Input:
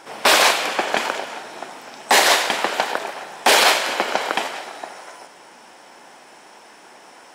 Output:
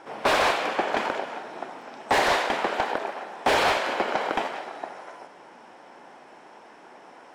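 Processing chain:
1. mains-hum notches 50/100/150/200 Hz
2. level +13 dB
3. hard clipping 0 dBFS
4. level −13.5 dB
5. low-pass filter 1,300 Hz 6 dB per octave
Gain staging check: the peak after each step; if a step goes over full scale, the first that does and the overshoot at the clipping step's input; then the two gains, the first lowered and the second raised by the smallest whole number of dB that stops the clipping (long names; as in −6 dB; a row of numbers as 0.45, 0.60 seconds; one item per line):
−4.0, +9.0, 0.0, −13.5, −13.5 dBFS
step 2, 9.0 dB
step 2 +4 dB, step 4 −4.5 dB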